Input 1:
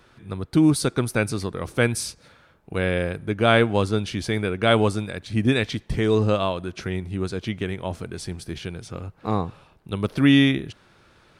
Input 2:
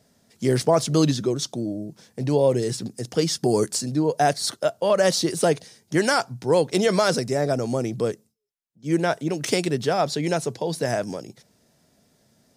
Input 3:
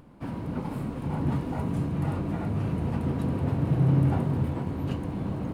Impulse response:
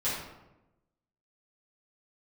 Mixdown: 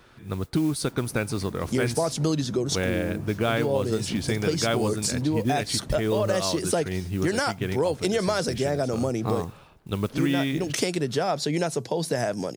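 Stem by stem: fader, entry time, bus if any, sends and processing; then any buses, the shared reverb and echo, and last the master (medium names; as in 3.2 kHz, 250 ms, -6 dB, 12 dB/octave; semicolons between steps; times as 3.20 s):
+1.0 dB, 0.00 s, no send, modulation noise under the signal 24 dB
+2.5 dB, 1.30 s, no send, none
-10.5 dB, 0.65 s, no send, none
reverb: none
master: compression 4:1, threshold -22 dBFS, peak gain reduction 11 dB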